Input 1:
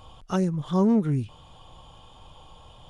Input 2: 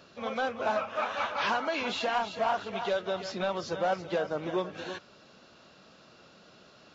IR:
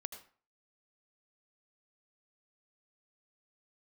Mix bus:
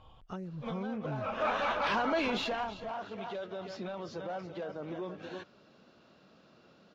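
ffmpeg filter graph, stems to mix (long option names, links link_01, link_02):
-filter_complex "[0:a]lowpass=3500,acompressor=threshold=-30dB:ratio=5,volume=-9dB,asplit=2[link_01][link_02];[1:a]equalizer=frequency=240:width_type=o:width=2.4:gain=5.5,alimiter=level_in=0.5dB:limit=-24dB:level=0:latency=1:release=10,volume=-0.5dB,adynamicsmooth=sensitivity=2.5:basefreq=6600,adelay=450,volume=-1dB,afade=type=out:start_time=2.24:duration=0.54:silence=0.334965[link_03];[link_02]apad=whole_len=326245[link_04];[link_03][link_04]sidechaincompress=threshold=-51dB:ratio=5:attack=6.1:release=120[link_05];[link_01][link_05]amix=inputs=2:normalize=0,dynaudnorm=framelen=470:gausssize=3:maxgain=3.5dB"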